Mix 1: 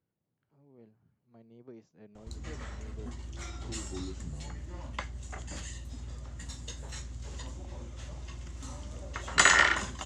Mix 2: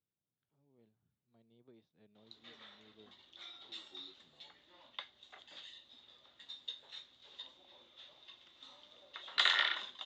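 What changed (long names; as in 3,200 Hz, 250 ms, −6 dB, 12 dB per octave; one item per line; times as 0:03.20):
background: add high-pass filter 480 Hz 12 dB per octave
master: add transistor ladder low-pass 3,800 Hz, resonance 85%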